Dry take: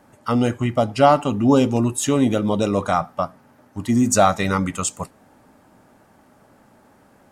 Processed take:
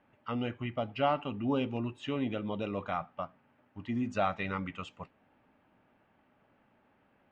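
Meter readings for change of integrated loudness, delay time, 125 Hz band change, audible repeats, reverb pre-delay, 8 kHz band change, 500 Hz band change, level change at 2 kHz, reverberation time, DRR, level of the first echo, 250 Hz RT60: -15.0 dB, no echo, -15.5 dB, no echo, no reverb, under -35 dB, -15.5 dB, -11.0 dB, no reverb, no reverb, no echo, no reverb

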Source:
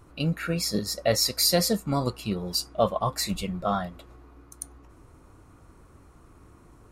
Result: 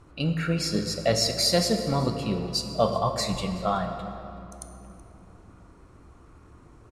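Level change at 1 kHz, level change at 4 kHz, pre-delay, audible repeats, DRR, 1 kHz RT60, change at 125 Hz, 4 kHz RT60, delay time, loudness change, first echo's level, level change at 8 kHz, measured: +1.0 dB, 0.0 dB, 23 ms, 1, 6.0 dB, 2.8 s, +2.0 dB, 1.8 s, 376 ms, 0.0 dB, -20.5 dB, -2.5 dB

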